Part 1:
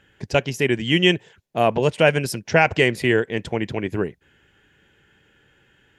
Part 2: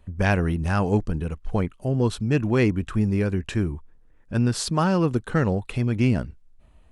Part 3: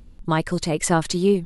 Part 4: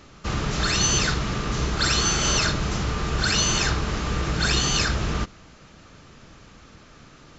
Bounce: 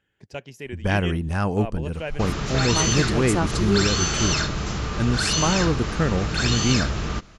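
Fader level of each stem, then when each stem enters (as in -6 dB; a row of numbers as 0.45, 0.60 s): -15.5, -1.0, -5.5, -1.5 dB; 0.00, 0.65, 2.45, 1.95 s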